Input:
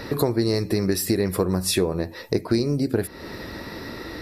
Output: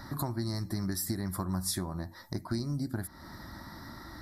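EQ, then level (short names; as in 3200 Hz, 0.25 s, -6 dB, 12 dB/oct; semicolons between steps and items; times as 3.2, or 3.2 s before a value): fixed phaser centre 1100 Hz, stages 4; -6.5 dB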